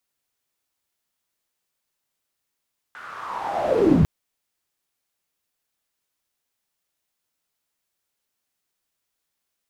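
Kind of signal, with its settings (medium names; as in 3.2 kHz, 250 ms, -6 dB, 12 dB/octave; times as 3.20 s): swept filtered noise pink, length 1.10 s bandpass, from 1.5 kHz, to 110 Hz, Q 5.7, linear, gain ramp +28 dB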